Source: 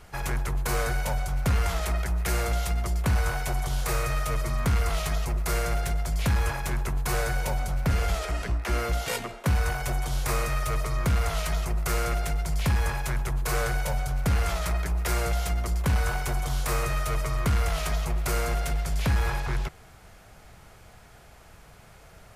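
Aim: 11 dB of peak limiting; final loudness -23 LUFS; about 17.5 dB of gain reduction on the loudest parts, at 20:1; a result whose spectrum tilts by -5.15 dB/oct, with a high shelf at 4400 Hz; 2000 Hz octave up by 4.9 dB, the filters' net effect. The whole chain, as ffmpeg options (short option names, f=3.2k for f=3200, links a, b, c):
-af "equalizer=f=2k:t=o:g=8,highshelf=f=4.4k:g=-9,acompressor=threshold=-37dB:ratio=20,volume=21.5dB,alimiter=limit=-14dB:level=0:latency=1"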